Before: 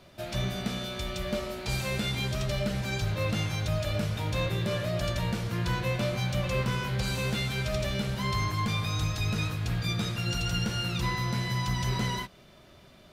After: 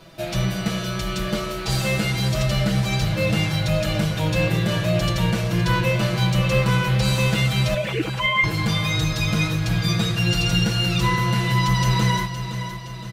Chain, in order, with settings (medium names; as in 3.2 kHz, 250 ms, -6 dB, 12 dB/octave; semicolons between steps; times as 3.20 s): 7.74–8.44 s: formants replaced by sine waves; comb 6.1 ms, depth 93%; on a send: feedback delay 516 ms, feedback 53%, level -10.5 dB; on the sum: trim +5.5 dB